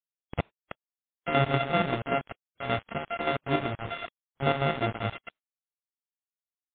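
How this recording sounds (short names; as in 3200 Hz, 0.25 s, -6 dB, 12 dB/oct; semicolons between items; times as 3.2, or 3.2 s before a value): a buzz of ramps at a fixed pitch in blocks of 64 samples; chopped level 5.2 Hz, depth 60%, duty 50%; a quantiser's noise floor 6-bit, dither none; MP3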